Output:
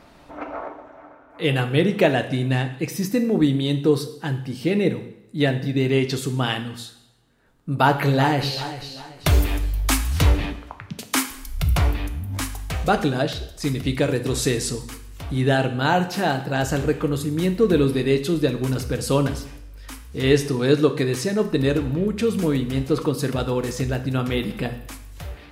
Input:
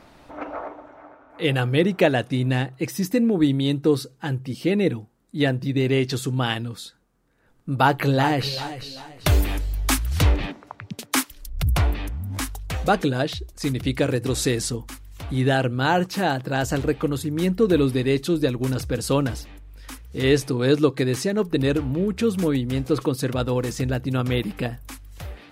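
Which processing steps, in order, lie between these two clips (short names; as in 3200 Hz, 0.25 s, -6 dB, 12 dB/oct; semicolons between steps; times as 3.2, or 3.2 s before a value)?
two-slope reverb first 0.73 s, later 2.1 s, from -24 dB, DRR 7 dB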